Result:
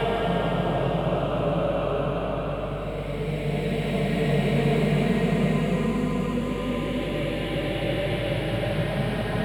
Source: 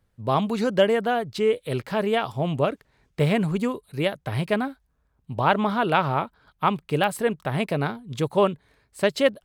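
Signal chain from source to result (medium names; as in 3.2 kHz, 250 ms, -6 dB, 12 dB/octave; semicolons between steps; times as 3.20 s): Paulstretch 4.4×, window 1.00 s, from 2.27 s; hum 50 Hz, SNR 11 dB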